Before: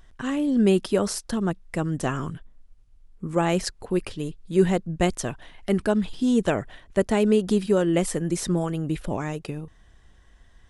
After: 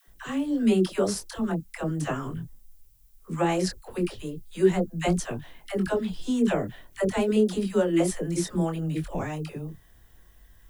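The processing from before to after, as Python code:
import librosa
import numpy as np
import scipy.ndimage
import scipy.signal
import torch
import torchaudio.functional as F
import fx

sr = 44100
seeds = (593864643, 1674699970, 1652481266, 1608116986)

y = fx.chorus_voices(x, sr, voices=4, hz=0.37, base_ms=22, depth_ms=5.0, mix_pct=35)
y = fx.dmg_noise_colour(y, sr, seeds[0], colour='violet', level_db=-65.0)
y = fx.dispersion(y, sr, late='lows', ms=81.0, hz=530.0)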